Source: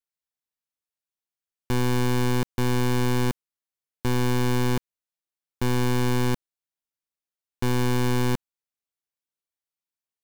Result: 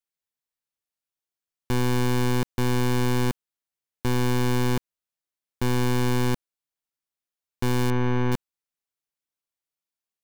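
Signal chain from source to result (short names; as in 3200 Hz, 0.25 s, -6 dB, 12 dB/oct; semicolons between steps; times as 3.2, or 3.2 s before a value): 7.9–8.32 pulse-width modulation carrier 6100 Hz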